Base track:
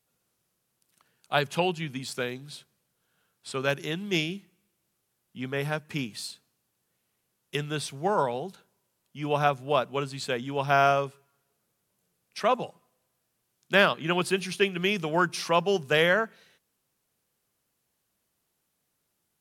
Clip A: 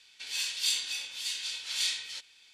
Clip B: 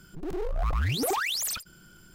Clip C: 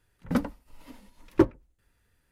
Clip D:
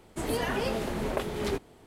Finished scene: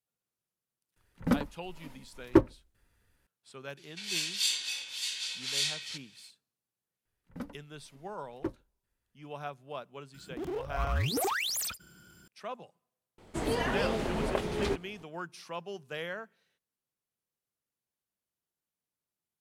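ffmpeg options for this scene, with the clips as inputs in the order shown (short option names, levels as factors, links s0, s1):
-filter_complex "[3:a]asplit=2[s0][s1];[0:a]volume=0.158[s2];[2:a]highpass=f=52:w=0.5412,highpass=f=52:w=1.3066[s3];[4:a]equalizer=f=13000:w=1:g=-9.5[s4];[s0]atrim=end=2.31,asetpts=PTS-STARTPTS,volume=0.891,afade=t=in:d=0.004:c=hsin,afade=t=out:st=2.306:d=0.004:c=hsin,adelay=960[s5];[1:a]atrim=end=2.53,asetpts=PTS-STARTPTS,volume=0.944,afade=t=in:d=0.004:c=hsin,afade=t=out:st=2.526:d=0.004:c=hsin,adelay=166257S[s6];[s1]atrim=end=2.31,asetpts=PTS-STARTPTS,volume=0.178,afade=t=in:d=0.004:c=hsin,afade=t=out:st=2.306:d=0.004:c=hsin,adelay=7050[s7];[s3]atrim=end=2.14,asetpts=PTS-STARTPTS,volume=0.708,afade=t=in:d=0.004:c=hsin,afade=t=out:st=2.136:d=0.004:c=hsin,adelay=10140[s8];[s4]atrim=end=1.86,asetpts=PTS-STARTPTS,volume=0.944,afade=t=in:d=0.004:c=hsin,afade=t=out:st=1.856:d=0.004:c=hsin,adelay=13180[s9];[s2][s5][s6][s7][s8][s9]amix=inputs=6:normalize=0"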